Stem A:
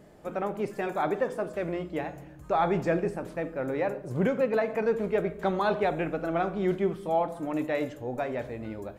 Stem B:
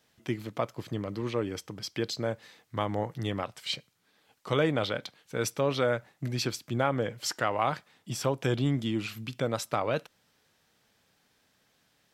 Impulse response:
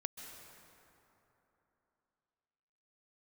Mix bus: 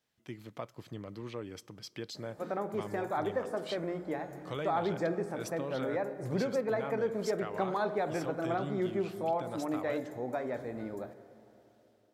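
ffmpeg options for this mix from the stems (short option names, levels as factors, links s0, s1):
-filter_complex "[0:a]highpass=140,equalizer=f=2800:t=o:w=0.32:g=-14,adelay=2150,volume=0.794,asplit=2[s0][s1];[s1]volume=0.376[s2];[1:a]dynaudnorm=f=100:g=7:m=1.78,volume=0.2,asplit=2[s3][s4];[s4]volume=0.075[s5];[2:a]atrim=start_sample=2205[s6];[s2][s5]amix=inputs=2:normalize=0[s7];[s7][s6]afir=irnorm=-1:irlink=0[s8];[s0][s3][s8]amix=inputs=3:normalize=0,acompressor=threshold=0.0126:ratio=1.5"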